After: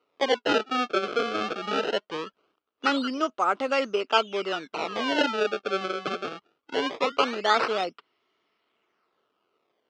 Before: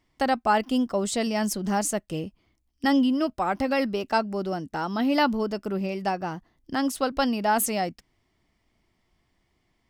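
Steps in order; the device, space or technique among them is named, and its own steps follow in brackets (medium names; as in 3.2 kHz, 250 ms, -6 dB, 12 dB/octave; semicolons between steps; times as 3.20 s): circuit-bent sampling toy (decimation with a swept rate 26×, swing 160% 0.21 Hz; cabinet simulation 420–5100 Hz, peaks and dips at 430 Hz +8 dB, 810 Hz -3 dB, 1.3 kHz +10 dB, 1.8 kHz -4 dB, 2.9 kHz +7 dB)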